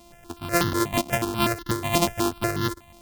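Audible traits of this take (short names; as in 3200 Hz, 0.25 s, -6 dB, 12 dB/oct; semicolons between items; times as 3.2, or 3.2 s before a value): a buzz of ramps at a fixed pitch in blocks of 128 samples; notches that jump at a steady rate 8.2 Hz 430–2400 Hz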